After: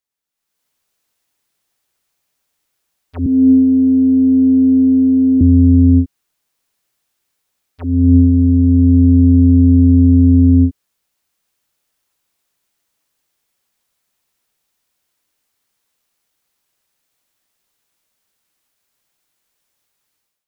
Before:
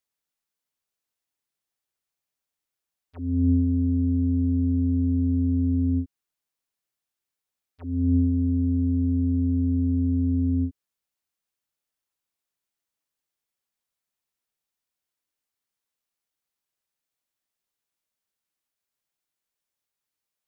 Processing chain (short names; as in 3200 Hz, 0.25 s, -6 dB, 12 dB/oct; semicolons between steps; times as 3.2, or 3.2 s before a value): 3.26–5.41 HPF 170 Hz 24 dB/oct; AGC gain up to 15.5 dB